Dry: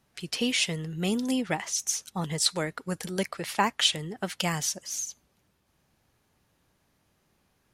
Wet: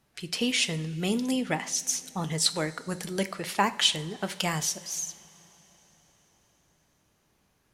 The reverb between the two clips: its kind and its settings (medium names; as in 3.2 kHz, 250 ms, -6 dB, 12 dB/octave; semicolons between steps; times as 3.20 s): two-slope reverb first 0.47 s, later 4.8 s, from -18 dB, DRR 11.5 dB